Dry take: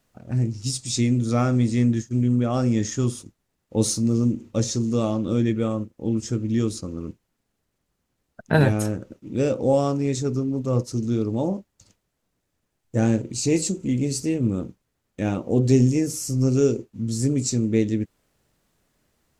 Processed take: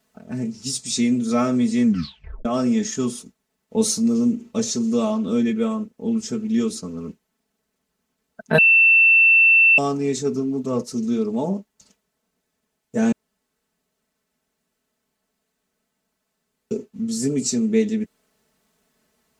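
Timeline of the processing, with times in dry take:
0:01.84: tape stop 0.61 s
0:08.58–0:09.78: beep over 2,680 Hz −12 dBFS
0:13.12–0:16.71: fill with room tone
whole clip: high-pass filter 160 Hz 6 dB per octave; comb filter 4.6 ms, depth 92%

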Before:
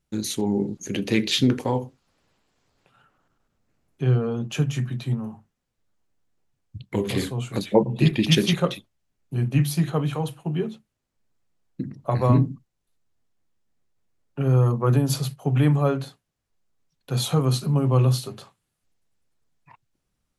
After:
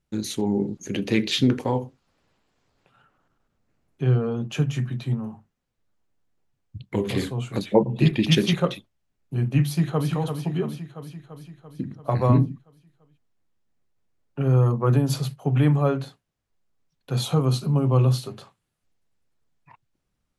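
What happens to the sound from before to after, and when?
0:09.66–0:10.11: delay throw 340 ms, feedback 65%, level −7 dB
0:17.23–0:18.10: parametric band 1,800 Hz −5.5 dB 0.42 octaves
whole clip: high-shelf EQ 5,400 Hz −6 dB

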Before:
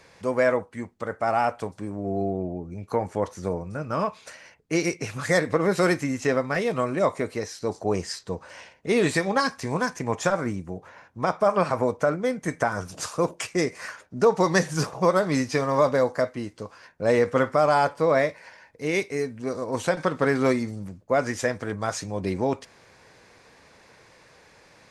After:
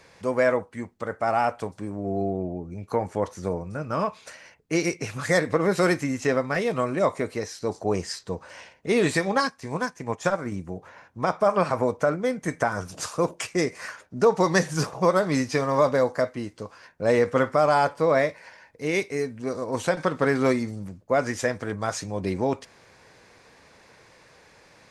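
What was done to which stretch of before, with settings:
0:09.45–0:10.52: expander for the loud parts, over −43 dBFS

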